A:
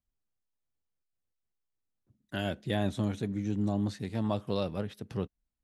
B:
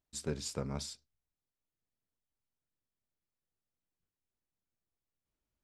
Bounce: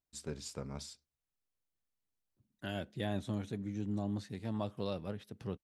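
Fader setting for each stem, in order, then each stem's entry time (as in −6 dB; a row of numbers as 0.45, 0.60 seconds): −6.5, −5.0 decibels; 0.30, 0.00 seconds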